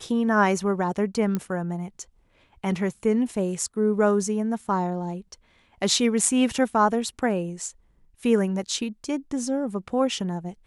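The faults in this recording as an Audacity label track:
1.350000	1.350000	click −14 dBFS

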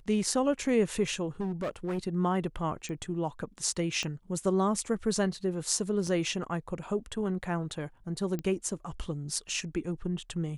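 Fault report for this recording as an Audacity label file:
1.400000	1.990000	clipping −28.5 dBFS
2.890000	2.890000	click −28 dBFS
4.030000	4.030000	click −21 dBFS
6.070000	6.070000	drop-out 3.6 ms
8.390000	8.390000	click −22 dBFS

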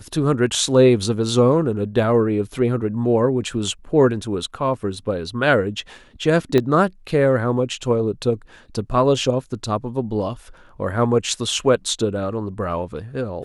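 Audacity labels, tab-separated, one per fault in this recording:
6.580000	6.580000	click −7 dBFS

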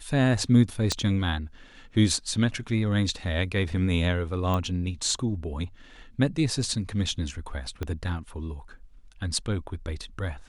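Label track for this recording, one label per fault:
0.920000	0.920000	click −12 dBFS
4.540000	4.540000	click −16 dBFS
7.830000	7.830000	click −18 dBFS

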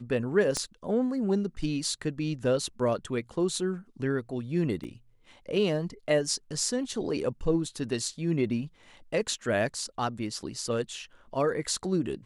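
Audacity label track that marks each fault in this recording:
0.570000	0.570000	click −16 dBFS
4.840000	4.840000	drop-out 2.6 ms

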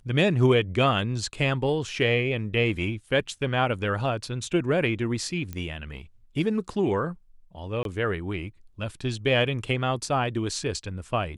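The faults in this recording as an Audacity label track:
5.530000	5.530000	click −20 dBFS
7.830000	7.850000	drop-out 22 ms

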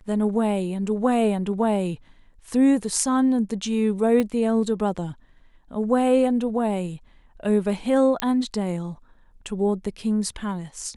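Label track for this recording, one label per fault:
4.200000	4.200000	click −12 dBFS
8.200000	8.200000	click −7 dBFS

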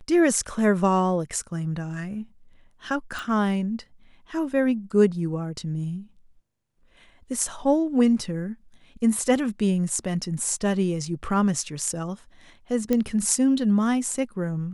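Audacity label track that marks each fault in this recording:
3.190000	3.190000	click
12.930000	12.930000	click −11 dBFS

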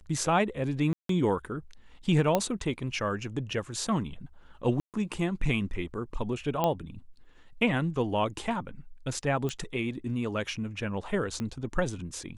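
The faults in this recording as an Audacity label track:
0.930000	1.090000	drop-out 163 ms
2.350000	2.350000	click −11 dBFS
4.800000	4.940000	drop-out 138 ms
6.640000	6.640000	click −13 dBFS
9.490000	9.490000	click −20 dBFS
11.400000	11.400000	click −22 dBFS

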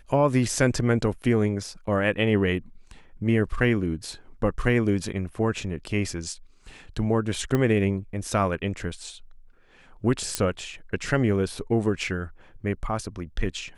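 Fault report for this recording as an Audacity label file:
7.550000	7.550000	click −12 dBFS
10.350000	10.350000	click −8 dBFS

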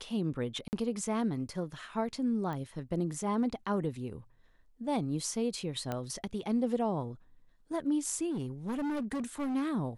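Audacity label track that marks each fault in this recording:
0.680000	0.730000	drop-out 49 ms
2.530000	2.530000	click −27 dBFS
5.920000	5.920000	click −21 dBFS
8.300000	9.560000	clipping −31 dBFS

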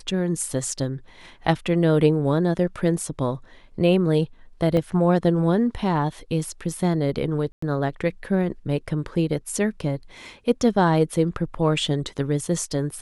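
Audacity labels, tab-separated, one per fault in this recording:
4.770000	4.770000	drop-out 2.1 ms
7.520000	7.620000	drop-out 104 ms

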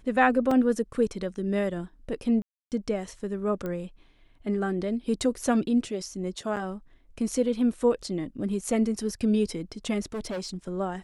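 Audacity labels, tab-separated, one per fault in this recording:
0.510000	0.510000	drop-out 3.5 ms
2.420000	2.720000	drop-out 298 ms
3.660000	3.660000	click −21 dBFS
6.560000	6.570000	drop-out 7.4 ms
10.140000	10.560000	clipping −29 dBFS

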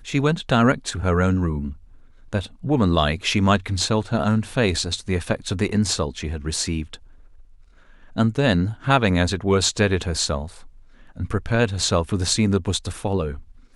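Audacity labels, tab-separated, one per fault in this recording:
6.560000	6.560000	drop-out 2 ms

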